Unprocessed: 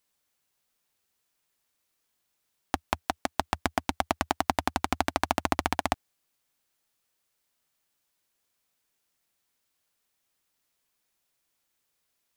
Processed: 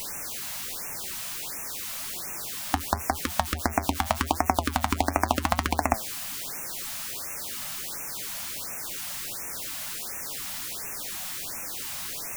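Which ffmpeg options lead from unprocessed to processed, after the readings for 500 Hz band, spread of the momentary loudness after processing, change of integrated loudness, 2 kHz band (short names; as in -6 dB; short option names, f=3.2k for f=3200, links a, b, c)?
+2.5 dB, 6 LU, +0.5 dB, +3.0 dB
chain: -filter_complex "[0:a]aeval=exprs='val(0)+0.5*0.0266*sgn(val(0))':c=same,flanger=delay=5.3:depth=5.5:regen=79:speed=0.89:shape=sinusoidal,asplit=2[a][b];[b]aeval=exprs='clip(val(0),-1,0.178)':c=same,volume=-6dB[c];[a][c]amix=inputs=2:normalize=0,afftfilt=real='re*(1-between(b*sr/1024,360*pow(4000/360,0.5+0.5*sin(2*PI*1.4*pts/sr))/1.41,360*pow(4000/360,0.5+0.5*sin(2*PI*1.4*pts/sr))*1.41))':imag='im*(1-between(b*sr/1024,360*pow(4000/360,0.5+0.5*sin(2*PI*1.4*pts/sr))/1.41,360*pow(4000/360,0.5+0.5*sin(2*PI*1.4*pts/sr))*1.41))':win_size=1024:overlap=0.75,volume=4dB"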